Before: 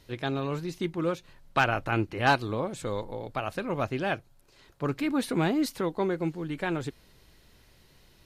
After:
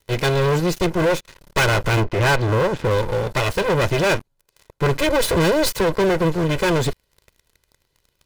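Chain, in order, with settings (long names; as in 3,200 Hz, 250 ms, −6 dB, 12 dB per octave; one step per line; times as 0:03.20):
lower of the sound and its delayed copy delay 2 ms
0:02.00–0:02.91: low-pass filter 2,200 Hz 12 dB per octave
leveller curve on the samples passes 5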